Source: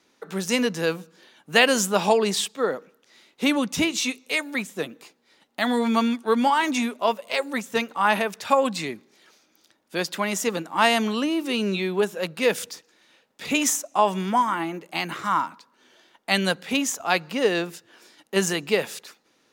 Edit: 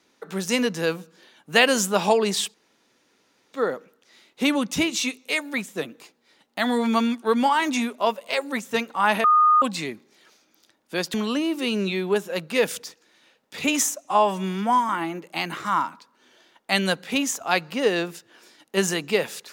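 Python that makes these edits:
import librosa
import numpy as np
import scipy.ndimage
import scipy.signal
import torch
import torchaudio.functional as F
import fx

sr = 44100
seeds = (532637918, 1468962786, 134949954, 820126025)

y = fx.edit(x, sr, fx.insert_room_tone(at_s=2.54, length_s=0.99),
    fx.bleep(start_s=8.25, length_s=0.38, hz=1230.0, db=-13.0),
    fx.cut(start_s=10.15, length_s=0.86),
    fx.stretch_span(start_s=13.92, length_s=0.56, factor=1.5), tone=tone)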